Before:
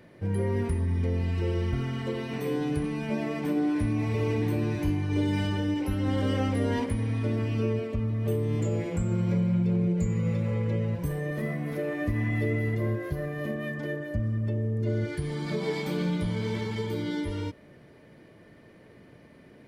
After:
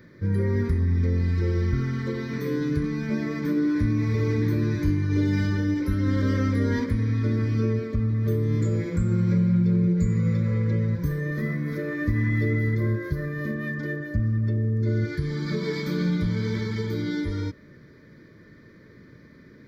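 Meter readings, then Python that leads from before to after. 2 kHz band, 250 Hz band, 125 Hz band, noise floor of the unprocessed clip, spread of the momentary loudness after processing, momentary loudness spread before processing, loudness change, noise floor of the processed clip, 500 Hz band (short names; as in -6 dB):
+3.5 dB, +3.5 dB, +4.5 dB, -53 dBFS, 6 LU, 5 LU, +4.0 dB, -50 dBFS, 0.0 dB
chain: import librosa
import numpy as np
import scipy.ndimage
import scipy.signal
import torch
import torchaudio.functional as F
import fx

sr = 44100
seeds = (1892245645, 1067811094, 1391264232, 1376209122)

y = fx.fixed_phaser(x, sr, hz=2800.0, stages=6)
y = y * 10.0 ** (5.0 / 20.0)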